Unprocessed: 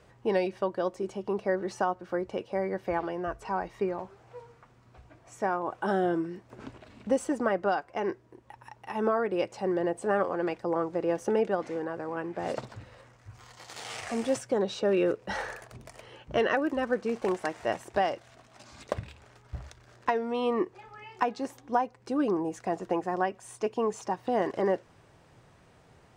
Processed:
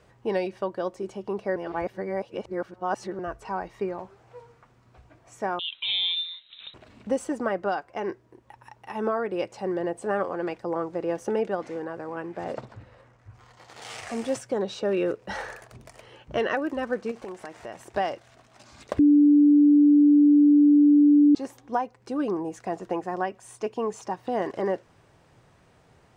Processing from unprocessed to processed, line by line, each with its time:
1.56–3.19 s: reverse
5.59–6.74 s: frequency inversion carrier 3.9 kHz
12.44–13.82 s: treble shelf 3.2 kHz -10.5 dB
17.11–17.81 s: compression 4:1, threshold -35 dBFS
18.99–21.35 s: bleep 292 Hz -13 dBFS

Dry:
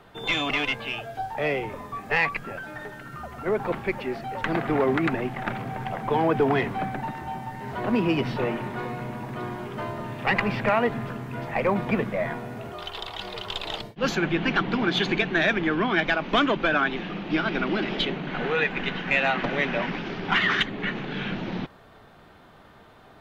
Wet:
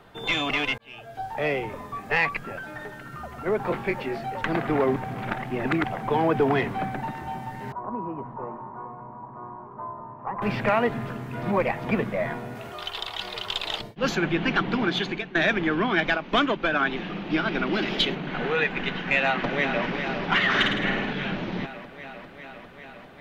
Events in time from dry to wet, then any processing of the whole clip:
0.78–1.34 s: fade in
3.63–4.30 s: doubling 22 ms -5.5 dB
4.96–5.84 s: reverse
7.72–10.42 s: four-pole ladder low-pass 1.1 kHz, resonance 75%
11.43–11.84 s: reverse
12.55–13.80 s: tilt shelf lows -4 dB, about 850 Hz
14.83–15.35 s: fade out, to -15 dB
16.17–16.80 s: upward expansion, over -31 dBFS
17.73–18.15 s: treble shelf 4.4 kHz +10.5 dB
19.23–19.84 s: echo throw 400 ms, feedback 80%, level -7.5 dB
20.49–21.13 s: flutter echo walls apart 9.2 m, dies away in 0.85 s

